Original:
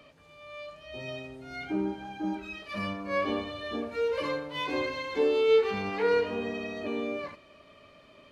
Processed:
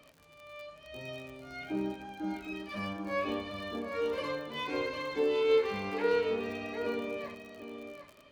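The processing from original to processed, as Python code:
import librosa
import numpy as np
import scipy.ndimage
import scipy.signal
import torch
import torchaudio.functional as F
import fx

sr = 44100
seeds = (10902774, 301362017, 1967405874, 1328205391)

p1 = x + fx.echo_single(x, sr, ms=755, db=-8.0, dry=0)
p2 = fx.dmg_crackle(p1, sr, seeds[0], per_s=60.0, level_db=-38.0)
y = p2 * 10.0 ** (-4.0 / 20.0)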